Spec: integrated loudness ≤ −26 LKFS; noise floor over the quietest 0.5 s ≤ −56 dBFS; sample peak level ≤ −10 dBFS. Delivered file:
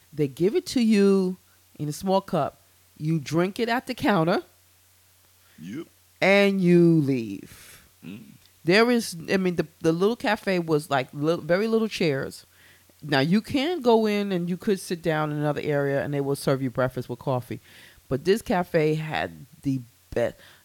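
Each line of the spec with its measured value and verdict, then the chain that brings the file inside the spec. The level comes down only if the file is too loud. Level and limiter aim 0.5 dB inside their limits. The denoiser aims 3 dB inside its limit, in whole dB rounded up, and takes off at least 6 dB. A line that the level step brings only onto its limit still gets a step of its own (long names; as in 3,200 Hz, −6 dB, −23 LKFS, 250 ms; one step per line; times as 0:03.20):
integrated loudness −24.0 LKFS: out of spec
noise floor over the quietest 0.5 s −59 dBFS: in spec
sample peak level −6.5 dBFS: out of spec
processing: level −2.5 dB
brickwall limiter −10.5 dBFS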